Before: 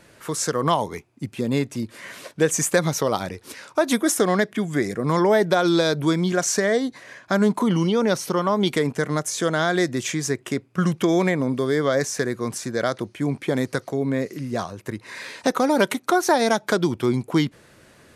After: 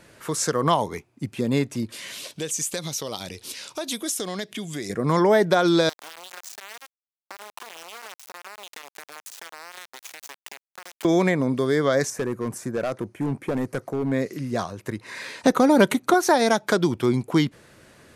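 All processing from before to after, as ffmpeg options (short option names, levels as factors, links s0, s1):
-filter_complex "[0:a]asettb=1/sr,asplit=3[s0][s1][s2];[s0]atrim=end=1.924[s3];[s1]atrim=start=1.92:end=4.9,asetpts=PTS-STARTPTS,afade=t=in:d=0.004:c=qsin,afade=t=out:st=2.976:d=0.004:c=qsin,highshelf=f=2300:t=q:w=1.5:g=9.5,acompressor=threshold=0.0178:ratio=2:attack=3.2:release=140:knee=1:detection=peak[s4];[s2]atrim=start=4.896[s5];[s3][s4]acrossfade=d=0.004:c1=hsin:c2=qsin[s6];[s6][s5]acrossfade=d=0.004:c1=qsin:c2=hsin,asettb=1/sr,asplit=3[s7][s8][s9];[s7]atrim=end=5.894[s10];[s8]atrim=start=5.89:end=11.05,asetpts=PTS-STARTPTS,afade=t=in:d=0.004:c=qsin,afade=t=out:st=5.156:d=0.004:c=qsin,acompressor=threshold=0.0282:ratio=8:attack=3.2:release=140:knee=1:detection=peak,aeval=exprs='val(0)*gte(abs(val(0)),0.0355)':c=same,highpass=650[s11];[s9]atrim=start=11.046[s12];[s10][s11]acrossfade=d=0.004:c1=hsin:c2=qsin[s13];[s13][s12]acrossfade=d=0.004:c1=qsin:c2=hsin,asettb=1/sr,asplit=3[s14][s15][s16];[s14]atrim=end=12.104[s17];[s15]atrim=start=12.1:end=14.12,asetpts=PTS-STARTPTS,afade=t=in:d=0.004:c=qsin,afade=t=out:st=2.016:d=0.004:c=qsin,equalizer=f=4000:t=o:w=1.7:g=-13,volume=10.6,asoftclip=hard,volume=0.0944[s18];[s16]atrim=start=14.116[s19];[s17][s18]acrossfade=d=0.004:c1=hsin:c2=qsin[s20];[s20][s19]acrossfade=d=0.004:c1=qsin:c2=hsin,asettb=1/sr,asplit=3[s21][s22][s23];[s21]atrim=end=15.444[s24];[s22]atrim=start=15.44:end=16.14,asetpts=PTS-STARTPTS,afade=t=in:d=0.004:c=qsin,afade=t=out:st=0.696:d=0.004:c=qsin,lowshelf=f=280:g=8.5,bandreject=f=5300:w=14[s25];[s23]atrim=start=16.136[s26];[s24][s25]acrossfade=d=0.004:c1=hsin:c2=qsin[s27];[s27][s26]acrossfade=d=0.004:c1=qsin:c2=hsin"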